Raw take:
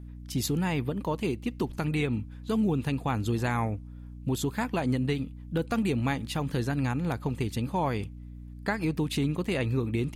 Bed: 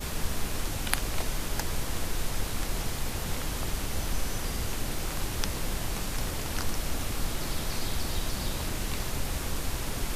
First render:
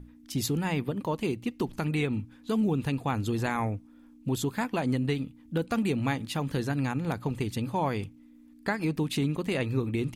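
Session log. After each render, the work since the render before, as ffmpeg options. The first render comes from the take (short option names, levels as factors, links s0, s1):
-af "bandreject=f=60:t=h:w=6,bandreject=f=120:t=h:w=6,bandreject=f=180:t=h:w=6"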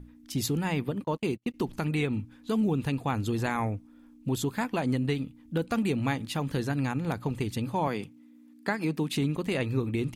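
-filter_complex "[0:a]asettb=1/sr,asplit=3[s0][s1][s2];[s0]atrim=end=1.044[s3];[s1]atrim=start=1.04:end=1.54,asetpts=PTS-STARTPTS,afade=t=in:d=0.004:c=qsin,afade=t=out:st=0.496:d=0.004:c=qsin,agate=range=0.0178:threshold=0.0178:ratio=16:release=100:detection=peak[s4];[s2]atrim=start=1.536[s5];[s3][s4]acrossfade=d=0.004:c1=hsin:c2=qsin[s6];[s6][s5]acrossfade=d=0.004:c1=qsin:c2=hsin,asettb=1/sr,asplit=3[s7][s8][s9];[s7]atrim=end=7.874[s10];[s8]atrim=start=7.87:end=9.14,asetpts=PTS-STARTPTS,afade=t=in:d=0.004:c=qsin,afade=t=out:st=1.266:d=0.004:c=qsin,highpass=f=140:w=0.5412,highpass=f=140:w=1.3066[s11];[s9]atrim=start=9.136[s12];[s10][s11]acrossfade=d=0.004:c1=hsin:c2=qsin[s13];[s13][s12]acrossfade=d=0.004:c1=qsin:c2=hsin"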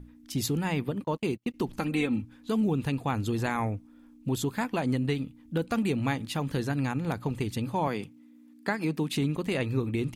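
-filter_complex "[0:a]asettb=1/sr,asplit=3[s0][s1][s2];[s0]atrim=end=1.794[s3];[s1]atrim=start=1.79:end=2.22,asetpts=PTS-STARTPTS,afade=t=in:d=0.004:c=qsin,afade=t=out:st=0.426:d=0.004:c=qsin,aecho=1:1:3.8:0.65,atrim=end_sample=18963[s4];[s2]atrim=start=2.216[s5];[s3][s4]acrossfade=d=0.004:c1=hsin:c2=qsin[s6];[s6][s5]acrossfade=d=0.004:c1=qsin:c2=hsin"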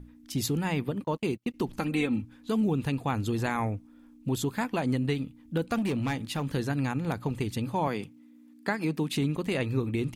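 -filter_complex "[0:a]asettb=1/sr,asplit=3[s0][s1][s2];[s0]atrim=end=5.784[s3];[s1]atrim=start=5.78:end=6.47,asetpts=PTS-STARTPTS,afade=t=in:d=0.004:c=qsin,afade=t=out:st=0.686:d=0.004:c=qsin,asoftclip=type=hard:threshold=0.0596[s4];[s2]atrim=start=6.466[s5];[s3][s4]acrossfade=d=0.004:c1=hsin:c2=qsin[s6];[s6][s5]acrossfade=d=0.004:c1=qsin:c2=hsin"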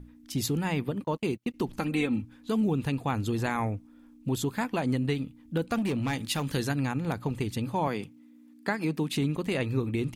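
-filter_complex "[0:a]asettb=1/sr,asplit=3[s0][s1][s2];[s0]atrim=end=6.134[s3];[s1]atrim=start=6.13:end=6.73,asetpts=PTS-STARTPTS,afade=t=in:d=0.004:c=qsin,afade=t=out:st=0.596:d=0.004:c=qsin,highshelf=f=2300:g=8[s4];[s2]atrim=start=6.726[s5];[s3][s4]acrossfade=d=0.004:c1=hsin:c2=qsin[s6];[s6][s5]acrossfade=d=0.004:c1=qsin:c2=hsin"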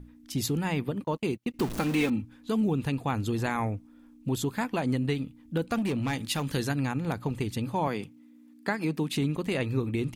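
-filter_complex "[0:a]asettb=1/sr,asplit=3[s0][s1][s2];[s0]atrim=end=1.594[s3];[s1]atrim=start=1.59:end=2.1,asetpts=PTS-STARTPTS,afade=t=in:d=0.004:c=qsin,afade=t=out:st=0.506:d=0.004:c=qsin,aeval=exprs='val(0)+0.5*0.0266*sgn(val(0))':c=same[s4];[s2]atrim=start=2.096[s5];[s3][s4]acrossfade=d=0.004:c1=hsin:c2=qsin[s6];[s6][s5]acrossfade=d=0.004:c1=qsin:c2=hsin"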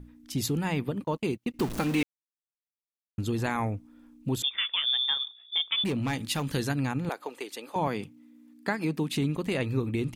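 -filter_complex "[0:a]asettb=1/sr,asplit=3[s0][s1][s2];[s0]atrim=end=4.424[s3];[s1]atrim=start=4.42:end=5.84,asetpts=PTS-STARTPTS,afade=t=in:d=0.004:c=qsin,afade=t=out:st=1.416:d=0.004:c=qsin,lowpass=f=3100:t=q:w=0.5098,lowpass=f=3100:t=q:w=0.6013,lowpass=f=3100:t=q:w=0.9,lowpass=f=3100:t=q:w=2.563,afreqshift=-3700[s4];[s2]atrim=start=5.836[s5];[s3][s4]acrossfade=d=0.004:c1=hsin:c2=qsin[s6];[s6][s5]acrossfade=d=0.004:c1=qsin:c2=hsin,asettb=1/sr,asplit=3[s7][s8][s9];[s7]atrim=end=7.094[s10];[s8]atrim=start=7.09:end=7.76,asetpts=PTS-STARTPTS,afade=t=in:d=0.004:c=qsin,afade=t=out:st=0.666:d=0.004:c=qsin,highpass=f=390:w=0.5412,highpass=f=390:w=1.3066[s11];[s9]atrim=start=7.756[s12];[s10][s11]acrossfade=d=0.004:c1=hsin:c2=qsin[s13];[s13][s12]acrossfade=d=0.004:c1=qsin:c2=hsin,asplit=3[s14][s15][s16];[s14]atrim=end=2.03,asetpts=PTS-STARTPTS,afade=t=out:st=2.026:d=0.004:c=hsin[s17];[s15]atrim=start=2.03:end=3.18,asetpts=PTS-STARTPTS,volume=0[s18];[s16]atrim=start=3.18,asetpts=PTS-STARTPTS,afade=t=in:d=0.004:c=hsin[s19];[s17][s18][s19]concat=n=3:v=0:a=1"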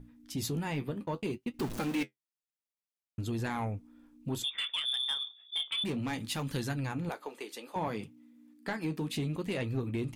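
-af "flanger=delay=7:depth=7.6:regen=-52:speed=0.61:shape=triangular,asoftclip=type=tanh:threshold=0.0562"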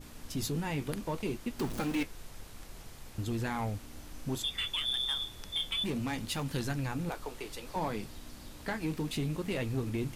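-filter_complex "[1:a]volume=0.141[s0];[0:a][s0]amix=inputs=2:normalize=0"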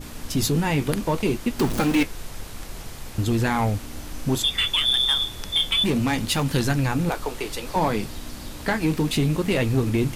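-af "volume=3.98"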